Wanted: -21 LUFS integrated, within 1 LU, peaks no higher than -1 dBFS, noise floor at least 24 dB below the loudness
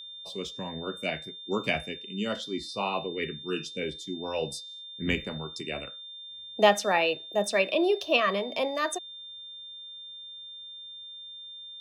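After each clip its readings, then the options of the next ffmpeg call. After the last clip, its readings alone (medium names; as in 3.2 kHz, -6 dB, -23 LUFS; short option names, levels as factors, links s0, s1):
steady tone 3.6 kHz; tone level -41 dBFS; loudness -29.5 LUFS; peak level -8.0 dBFS; loudness target -21.0 LUFS
-> -af "bandreject=f=3600:w=30"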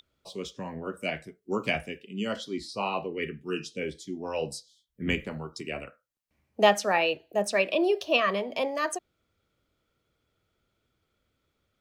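steady tone not found; loudness -29.5 LUFS; peak level -8.5 dBFS; loudness target -21.0 LUFS
-> -af "volume=2.66,alimiter=limit=0.891:level=0:latency=1"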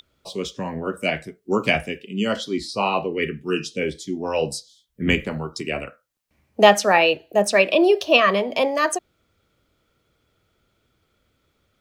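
loudness -21.0 LUFS; peak level -1.0 dBFS; noise floor -70 dBFS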